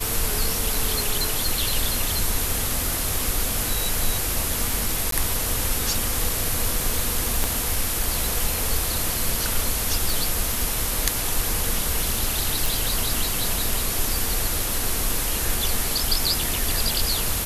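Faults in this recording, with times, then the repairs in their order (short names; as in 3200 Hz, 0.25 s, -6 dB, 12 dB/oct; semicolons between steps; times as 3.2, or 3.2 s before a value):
5.11–5.12 gap 13 ms
7.44 pop -7 dBFS
10.1 pop
12.66 pop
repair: de-click; interpolate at 5.11, 13 ms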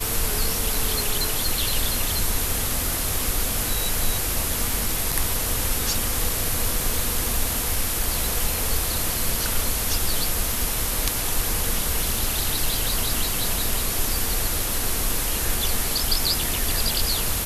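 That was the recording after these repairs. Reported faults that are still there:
7.44 pop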